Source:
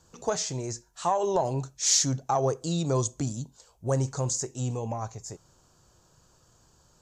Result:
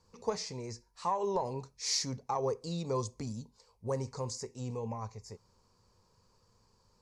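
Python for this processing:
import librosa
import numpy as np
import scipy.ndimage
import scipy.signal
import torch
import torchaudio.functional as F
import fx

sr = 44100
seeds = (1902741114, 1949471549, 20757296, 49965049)

y = fx.high_shelf(x, sr, hz=9200.0, db=-8.0)
y = fx.quant_float(y, sr, bits=8)
y = fx.ripple_eq(y, sr, per_octave=0.89, db=10)
y = F.gain(torch.from_numpy(y), -7.5).numpy()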